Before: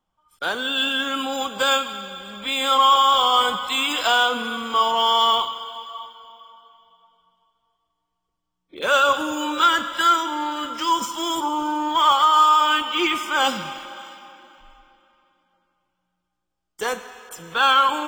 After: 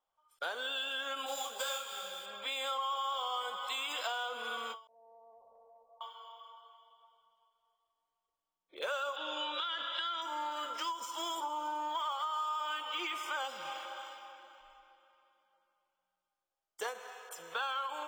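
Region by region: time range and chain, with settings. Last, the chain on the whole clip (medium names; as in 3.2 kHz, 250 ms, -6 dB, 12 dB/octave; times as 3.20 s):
1.26–2.26 s: tone controls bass +2 dB, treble +11 dB + modulation noise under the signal 14 dB + detune thickener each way 42 cents
4.87–6.01 s: steep low-pass 630 Hz + peaking EQ 350 Hz -14.5 dB + compression, threshold -50 dBFS
9.16–10.22 s: resonant low-pass 3.5 kHz, resonance Q 3.7 + compression, threshold -16 dBFS
whole clip: resonant low shelf 350 Hz -13.5 dB, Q 1.5; compression 6:1, threshold -26 dBFS; endings held to a fixed fall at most 150 dB/s; trim -8.5 dB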